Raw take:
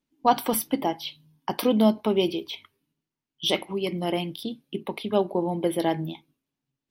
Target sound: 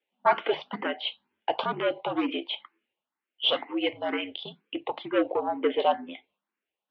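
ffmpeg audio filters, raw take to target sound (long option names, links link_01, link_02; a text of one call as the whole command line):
ffmpeg -i in.wav -filter_complex "[0:a]aeval=exprs='(tanh(8.91*val(0)+0.45)-tanh(0.45))/8.91':channel_layout=same,highpass=frequency=450:width_type=q:width=0.5412,highpass=frequency=450:width_type=q:width=1.307,lowpass=frequency=3300:width_type=q:width=0.5176,lowpass=frequency=3300:width_type=q:width=0.7071,lowpass=frequency=3300:width_type=q:width=1.932,afreqshift=-68,asplit=2[link_01][link_02];[link_02]afreqshift=2.1[link_03];[link_01][link_03]amix=inputs=2:normalize=1,volume=9dB" out.wav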